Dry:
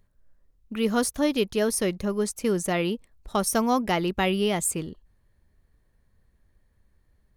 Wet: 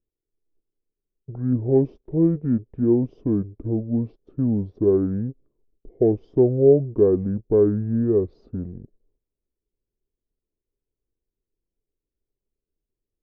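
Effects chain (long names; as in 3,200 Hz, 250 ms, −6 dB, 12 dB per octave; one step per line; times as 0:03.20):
mu-law and A-law mismatch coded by A
noise gate −59 dBFS, range −12 dB
low-pass with resonance 740 Hz, resonance Q 4.9
change of speed 0.557×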